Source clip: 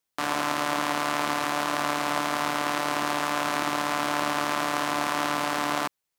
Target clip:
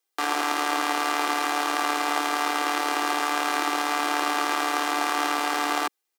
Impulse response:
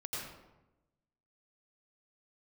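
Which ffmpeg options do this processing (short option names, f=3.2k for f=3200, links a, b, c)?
-af "highpass=f=270:w=0.5412,highpass=f=270:w=1.3066,aecho=1:1:2.5:0.59,volume=1dB"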